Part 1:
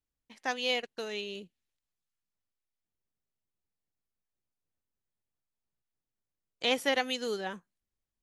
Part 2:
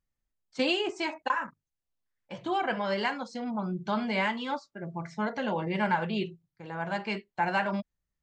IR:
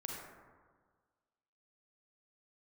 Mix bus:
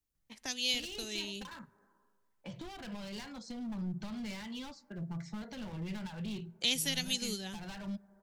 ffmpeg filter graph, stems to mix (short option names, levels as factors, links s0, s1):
-filter_complex "[0:a]agate=range=0.501:threshold=0.00251:ratio=16:detection=peak,highshelf=f=5500:g=8.5,volume=1.33,asplit=2[s0][s1];[s1]volume=0.075[s2];[1:a]acompressor=threshold=0.0355:ratio=6,asoftclip=type=hard:threshold=0.0224,adelay=150,volume=0.841,asplit=2[s3][s4];[s4]volume=0.0794[s5];[2:a]atrim=start_sample=2205[s6];[s2][s5]amix=inputs=2:normalize=0[s7];[s7][s6]afir=irnorm=-1:irlink=0[s8];[s0][s3][s8]amix=inputs=3:normalize=0,acrossover=split=190|3000[s9][s10][s11];[s10]acompressor=threshold=0.00251:ratio=4[s12];[s9][s12][s11]amix=inputs=3:normalize=0,lowshelf=f=380:g=5"